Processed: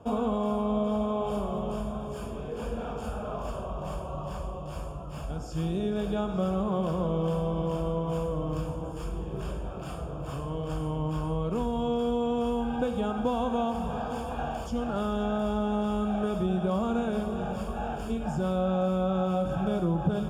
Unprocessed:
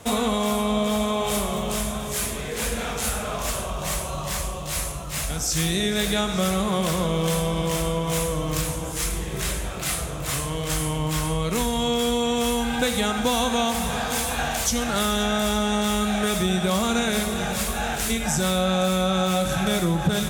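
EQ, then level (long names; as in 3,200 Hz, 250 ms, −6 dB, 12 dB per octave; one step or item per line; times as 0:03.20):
moving average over 22 samples
low-shelf EQ 200 Hz −3 dB
−2.5 dB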